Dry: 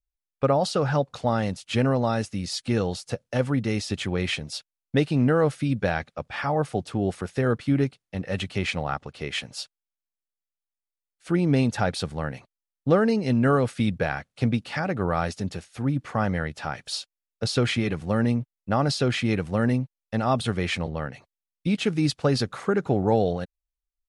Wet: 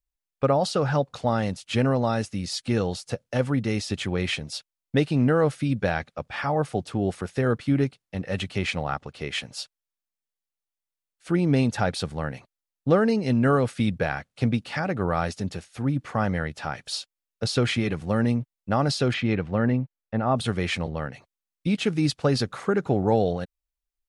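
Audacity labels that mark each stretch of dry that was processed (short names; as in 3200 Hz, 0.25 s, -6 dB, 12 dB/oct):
19.130000	20.350000	LPF 4000 Hz -> 1600 Hz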